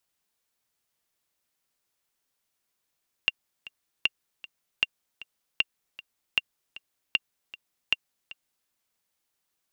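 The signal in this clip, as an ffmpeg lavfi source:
-f lavfi -i "aevalsrc='pow(10,(-8.5-19*gte(mod(t,2*60/155),60/155))/20)*sin(2*PI*2780*mod(t,60/155))*exp(-6.91*mod(t,60/155)/0.03)':d=5.41:s=44100"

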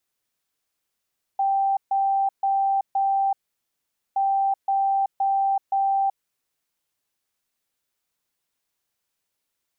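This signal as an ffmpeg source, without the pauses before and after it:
-f lavfi -i "aevalsrc='0.119*sin(2*PI*784*t)*clip(min(mod(mod(t,2.77),0.52),0.38-mod(mod(t,2.77),0.52))/0.005,0,1)*lt(mod(t,2.77),2.08)':d=5.54:s=44100"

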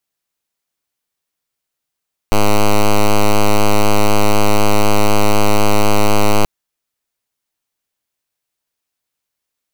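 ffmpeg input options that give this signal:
-f lavfi -i "aevalsrc='0.355*(2*lt(mod(104*t,1),0.06)-1)':d=4.13:s=44100"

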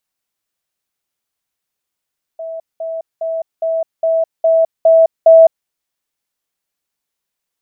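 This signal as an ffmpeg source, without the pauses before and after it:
-f lavfi -i "aevalsrc='pow(10,(-23+3*floor(t/0.41))/20)*sin(2*PI*653*t)*clip(min(mod(t,0.41),0.21-mod(t,0.41))/0.005,0,1)':d=3.28:s=44100"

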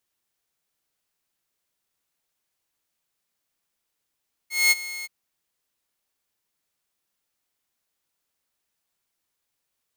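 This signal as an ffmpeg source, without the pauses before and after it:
-f lavfi -i "aevalsrc='0.266*(2*mod(2160*t,1)-1)':d=0.576:s=44100,afade=t=in:d=0.212,afade=t=out:st=0.212:d=0.029:silence=0.133,afade=t=out:st=0.55:d=0.026"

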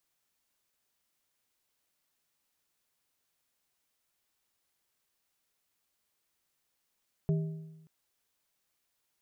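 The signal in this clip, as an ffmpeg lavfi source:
-f lavfi -i "aevalsrc='0.0668*pow(10,-3*t/1.05)*sin(2*PI*159*t)+0.0224*pow(10,-3*t/0.798)*sin(2*PI*397.5*t)+0.0075*pow(10,-3*t/0.693)*sin(2*PI*636*t)':d=0.58:s=44100"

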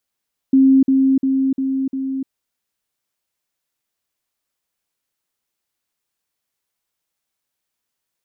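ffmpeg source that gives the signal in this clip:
-f lavfi -i "aevalsrc='pow(10,(-8-3*floor(t/0.35))/20)*sin(2*PI*267*t)*clip(min(mod(t,0.35),0.3-mod(t,0.35))/0.005,0,1)':d=1.75:s=44100"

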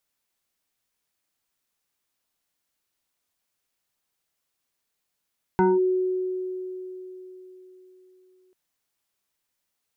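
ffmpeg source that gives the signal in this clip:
-f lavfi -i "aevalsrc='0.178*pow(10,-3*t/4.01)*sin(2*PI*370*t+1.3*clip(1-t/0.2,0,1)*sin(2*PI*1.51*370*t))':d=2.94:s=44100"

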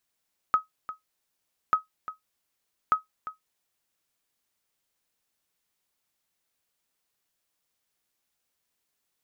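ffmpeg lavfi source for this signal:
-f lavfi -i "aevalsrc='0.237*(sin(2*PI*1270*mod(t,1.19))*exp(-6.91*mod(t,1.19)/0.14)+0.188*sin(2*PI*1270*max(mod(t,1.19)-0.35,0))*exp(-6.91*max(mod(t,1.19)-0.35,0)/0.14))':d=3.57:s=44100"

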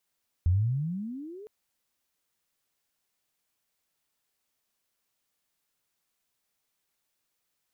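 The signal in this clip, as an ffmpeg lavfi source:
-f lavfi -i "aevalsrc='pow(10,(-19-23*t/1.01)/20)*sin(2*PI*82.5*1.01/(29*log(2)/12)*(exp(29*log(2)/12*t/1.01)-1))':d=1.01:s=44100"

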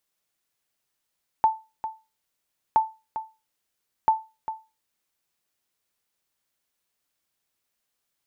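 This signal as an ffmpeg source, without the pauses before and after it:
-f lavfi -i "aevalsrc='0.282*(sin(2*PI*882*mod(t,1.32))*exp(-6.91*mod(t,1.32)/0.27)+0.251*sin(2*PI*882*max(mod(t,1.32)-0.4,0))*exp(-6.91*max(mod(t,1.32)-0.4,0)/0.27))':d=3.96:s=44100"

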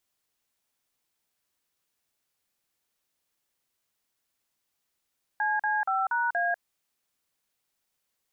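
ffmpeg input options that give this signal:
-f lavfi -i "aevalsrc='0.0473*clip(min(mod(t,0.237),0.195-mod(t,0.237))/0.002,0,1)*(eq(floor(t/0.237),0)*(sin(2*PI*852*mod(t,0.237))+sin(2*PI*1633*mod(t,0.237)))+eq(floor(t/0.237),1)*(sin(2*PI*852*mod(t,0.237))+sin(2*PI*1633*mod(t,0.237)))+eq(floor(t/0.237),2)*(sin(2*PI*770*mod(t,0.237))+sin(2*PI*1336*mod(t,0.237)))+eq(floor(t/0.237),3)*(sin(2*PI*941*mod(t,0.237))+sin(2*PI*1477*mod(t,0.237)))+eq(floor(t/0.237),4)*(sin(2*PI*697*mod(t,0.237))+sin(2*PI*1633*mod(t,0.237))))':d=1.185:s=44100"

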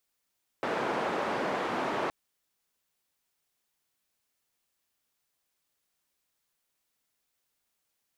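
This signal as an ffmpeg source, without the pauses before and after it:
-f lavfi -i "anoisesrc=c=white:d=1.47:r=44100:seed=1,highpass=f=240,lowpass=f=1000,volume=-12.1dB"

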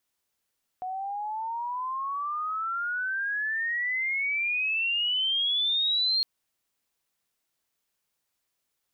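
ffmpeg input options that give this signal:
-f lavfi -i "aevalsrc='pow(10,(-22+8.5*(t/5.41-1))/20)*sin(2*PI*732*5.41/(30.5*log(2)/12)*(exp(30.5*log(2)/12*t/5.41)-1))':d=5.41:s=44100"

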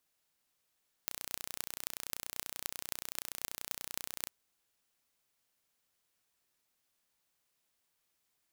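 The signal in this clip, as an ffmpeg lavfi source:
-f lavfi -i "aevalsrc='0.447*eq(mod(n,1451),0)*(0.5+0.5*eq(mod(n,11608),0))':d=3.2:s=44100"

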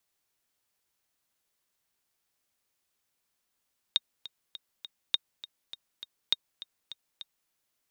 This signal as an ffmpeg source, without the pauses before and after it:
-f lavfi -i "aevalsrc='pow(10,(-10.5-17*gte(mod(t,4*60/203),60/203))/20)*sin(2*PI*3710*mod(t,60/203))*exp(-6.91*mod(t,60/203)/0.03)':d=3.54:s=44100"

